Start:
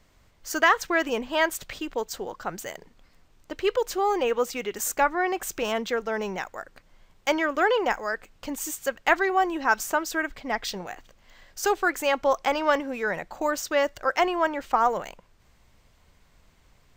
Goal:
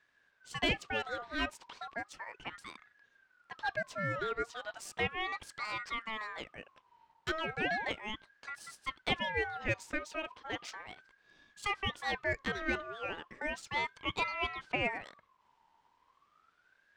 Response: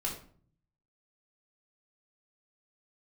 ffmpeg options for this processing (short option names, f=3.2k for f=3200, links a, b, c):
-af "adynamicsmooth=sensitivity=2:basefreq=5.2k,aeval=exprs='val(0)*sin(2*PI*1300*n/s+1300*0.3/0.35*sin(2*PI*0.35*n/s))':c=same,volume=-8.5dB"